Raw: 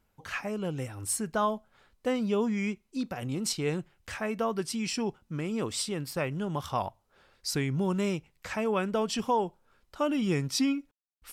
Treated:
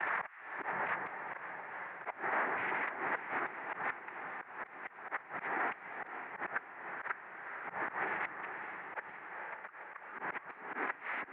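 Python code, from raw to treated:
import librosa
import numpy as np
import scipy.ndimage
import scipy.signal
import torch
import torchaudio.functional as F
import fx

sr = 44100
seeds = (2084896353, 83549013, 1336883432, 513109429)

p1 = np.sign(x) * np.sqrt(np.mean(np.square(x)))
p2 = fx.noise_vocoder(p1, sr, seeds[0], bands=6)
p3 = fx.rider(p2, sr, range_db=4, speed_s=2.0)
p4 = scipy.signal.sosfilt(scipy.signal.butter(2, 1100.0, 'highpass', fs=sr, output='sos'), p3)
p5 = fx.gate_flip(p4, sr, shuts_db=-28.0, range_db=-28)
p6 = fx.pitch_keep_formants(p5, sr, semitones=-1.5)
p7 = scipy.signal.sosfilt(scipy.signal.butter(8, 2200.0, 'lowpass', fs=sr, output='sos'), p6)
p8 = p7 + fx.echo_diffused(p7, sr, ms=484, feedback_pct=55, wet_db=-11, dry=0)
p9 = fx.auto_swell(p8, sr, attack_ms=121.0)
p10 = fx.band_squash(p9, sr, depth_pct=40)
y = p10 * 10.0 ** (10.0 / 20.0)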